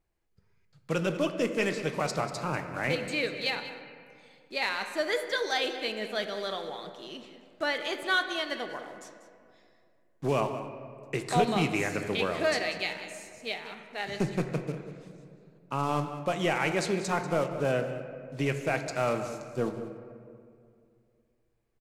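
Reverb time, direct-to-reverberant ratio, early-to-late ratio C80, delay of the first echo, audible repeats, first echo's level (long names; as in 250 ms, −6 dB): 2.4 s, 6.0 dB, 8.5 dB, 191 ms, 1, −14.0 dB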